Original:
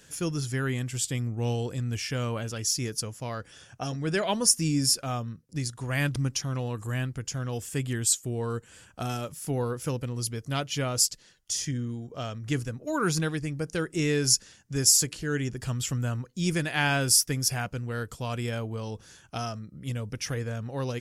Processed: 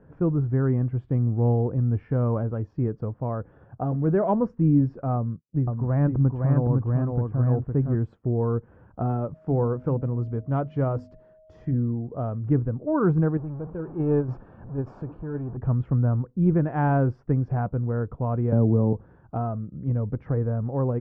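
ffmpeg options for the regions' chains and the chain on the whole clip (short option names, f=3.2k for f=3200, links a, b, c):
-filter_complex "[0:a]asettb=1/sr,asplit=3[a][b][c];[a]atrim=end=5.164[d];[b]atrim=start=5.16:end=7.95,asetpts=PTS-STARTPTS,afade=t=in:d=0.004:c=qsin,afade=t=out:st=2.786:d=0.004:c=qsin,agate=range=-33dB:threshold=-42dB:ratio=3:release=100:detection=peak,lowpass=f=1.9k:p=1,aecho=1:1:510:0.668,atrim=end_sample=123039[e];[c]atrim=start=7.946[f];[d][e]acrossfade=d=0.004:c1=hsin:c2=qsin[g];[g][f]acrossfade=d=0.004:c1=qsin:c2=hsin,asettb=1/sr,asplit=3[h][i][j];[h]atrim=end=9.344[k];[i]atrim=start=9.34:end=11.74,asetpts=PTS-STARTPTS,afade=t=in:d=0.004:c=qsin,afade=t=out:st=2.396:d=0.004:c=qsin,aeval=exprs='val(0)+0.00141*sin(2*PI*630*n/s)':c=same,aemphasis=mode=production:type=75fm,bandreject=f=50:t=h:w=6,bandreject=f=100:t=h:w=6,bandreject=f=150:t=h:w=6,bandreject=f=200:t=h:w=6,bandreject=f=250:t=h:w=6[l];[j]atrim=start=11.736[m];[k][l]acrossfade=d=0.004:c1=hsin:c2=qsin[n];[n][m]acrossfade=d=0.004:c1=qsin:c2=hsin,asettb=1/sr,asplit=3[o][p][q];[o]atrim=end=13.374[r];[p]atrim=start=13.37:end=15.57,asetpts=PTS-STARTPTS,afade=t=in:d=0.004:c=qsin,afade=t=out:st=2.196:d=0.004:c=qsin,aeval=exprs='val(0)+0.5*0.0376*sgn(val(0))':c=same,agate=range=-12dB:threshold=-23dB:ratio=16:release=100:detection=peak,asuperstop=centerf=2000:order=8:qfactor=7.1[s];[q]atrim=start=15.566[t];[r][s]acrossfade=d=0.004:c1=hsin:c2=qsin[u];[u][t]acrossfade=d=0.004:c1=qsin:c2=hsin,asettb=1/sr,asplit=3[v][w][x];[v]atrim=end=18.524[y];[w]atrim=start=18.52:end=18.93,asetpts=PTS-STARTPTS,afade=t=in:d=0.004:c=qsin,afade=t=out:st=0.406:d=0.004:c=qsin,equalizer=f=310:t=o:w=2.8:g=13.5,acrossover=split=210|3000[z][aa][ab];[aa]acompressor=threshold=-32dB:ratio=2.5:attack=3.2:release=140:knee=2.83:detection=peak[ac];[z][ac][ab]amix=inputs=3:normalize=0[ad];[x]atrim=start=18.926[ae];[y][ad]acrossfade=d=0.004:c1=hsin:c2=qsin[af];[af][ae]acrossfade=d=0.004:c1=qsin:c2=hsin,lowpass=f=1.1k:w=0.5412,lowpass=f=1.1k:w=1.3066,lowshelf=f=450:g=4,volume=4dB"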